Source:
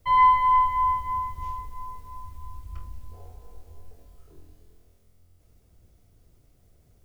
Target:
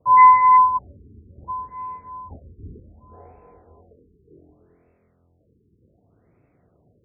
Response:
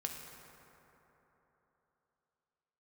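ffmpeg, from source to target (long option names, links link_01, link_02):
-filter_complex "[0:a]highpass=150,asettb=1/sr,asplit=3[link_01][link_02][link_03];[link_01]atrim=end=2.304[link_04];[link_02]atrim=start=2.3:end=2.8,asetpts=PTS-STARTPTS,afade=type=in:duration=0.004:curve=qsin,afade=type=out:start_time=0.496:duration=0.004:curve=qsin,aeval=exprs='0.0133*sin(PI/2*4.47*val(0)/0.0133)':channel_layout=same[link_05];[link_03]atrim=start=2.796[link_06];[link_04][link_05]acrossfade=duration=0.004:curve1=hsin:curve2=qsin[link_07];[link_07][link_06]acrossfade=duration=0.004:curve1=qsin:curve2=hsin,afftfilt=real='re*lt(b*sr/1024,450*pow(2700/450,0.5+0.5*sin(2*PI*0.66*pts/sr)))':imag='im*lt(b*sr/1024,450*pow(2700/450,0.5+0.5*sin(2*PI*0.66*pts/sr)))':win_size=1024:overlap=0.75,volume=7dB"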